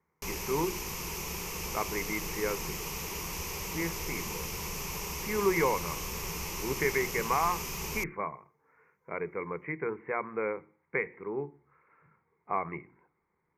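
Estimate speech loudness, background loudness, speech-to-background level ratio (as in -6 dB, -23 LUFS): -34.0 LUFS, -36.0 LUFS, 2.0 dB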